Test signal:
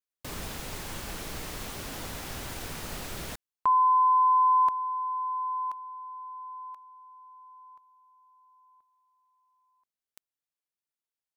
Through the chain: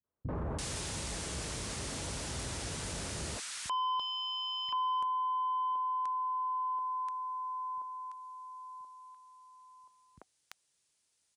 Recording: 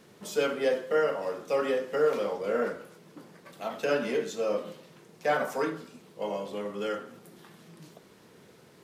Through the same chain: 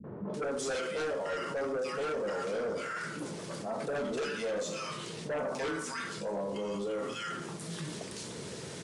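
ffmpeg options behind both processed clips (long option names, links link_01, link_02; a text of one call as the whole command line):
ffmpeg -i in.wav -filter_complex "[0:a]highpass=frequency=47:width=0.5412,highpass=frequency=47:width=1.3066,bass=frequency=250:gain=3,treble=frequency=4000:gain=8,bandreject=frequency=750:width=17,acrossover=split=230|1200[link_01][link_02][link_03];[link_02]adelay=40[link_04];[link_03]adelay=340[link_05];[link_01][link_04][link_05]amix=inputs=3:normalize=0,aeval=exprs='0.178*sin(PI/2*3.16*val(0)/0.178)':channel_layout=same,areverse,acompressor=threshold=-32dB:ratio=8:attack=0.79:release=69:knee=6:detection=peak,areverse,aresample=22050,aresample=44100,asoftclip=type=hard:threshold=-28dB,adynamicequalizer=threshold=0.00447:dfrequency=2000:dqfactor=0.7:tfrequency=2000:tqfactor=0.7:attack=5:release=100:ratio=0.375:range=2:mode=cutabove:tftype=highshelf" out.wav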